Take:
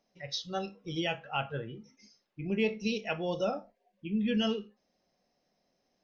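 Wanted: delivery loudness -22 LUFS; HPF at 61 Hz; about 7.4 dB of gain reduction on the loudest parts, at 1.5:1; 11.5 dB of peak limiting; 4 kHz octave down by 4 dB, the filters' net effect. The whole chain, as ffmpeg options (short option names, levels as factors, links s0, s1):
-af "highpass=61,equalizer=f=4000:t=o:g=-6,acompressor=threshold=0.00447:ratio=1.5,volume=18.8,alimiter=limit=0.237:level=0:latency=1"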